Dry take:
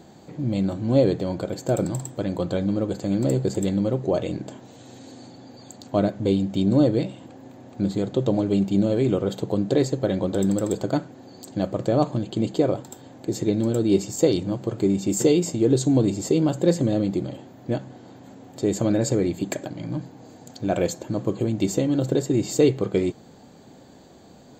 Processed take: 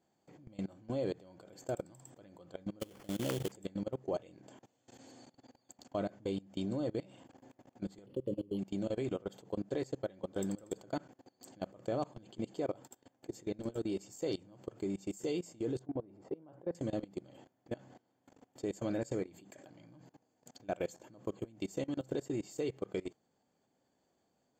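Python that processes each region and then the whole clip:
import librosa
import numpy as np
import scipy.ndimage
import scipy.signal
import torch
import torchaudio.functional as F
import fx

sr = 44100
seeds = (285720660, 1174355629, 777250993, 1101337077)

y = fx.chain(x, sr, fx.high_shelf(hz=5100.0, db=7.5),
    fx.sample_hold(seeds[0], rate_hz=3600.0, jitter_pct=20),
    fx.pre_swell(db_per_s=35.0), at=(2.8, 3.52))
y = fx.chain(y, sr, fx.brickwall_bandstop(low_hz=590.0, high_hz=3800.0),
    fx.high_shelf(hz=3900.0, db=8.0),
    fx.resample_linear(factor=6), at=(8.06, 8.59))
y = fx.chain(y, sr, fx.lowpass(hz=1100.0, slope=12),
    fx.low_shelf(hz=430.0, db=-6.5), at=(15.79, 16.75))
y = fx.level_steps(y, sr, step_db=22)
y = fx.low_shelf(y, sr, hz=370.0, db=-8.0)
y = fx.notch(y, sr, hz=3900.0, q=5.7)
y = y * 10.0 ** (-8.0 / 20.0)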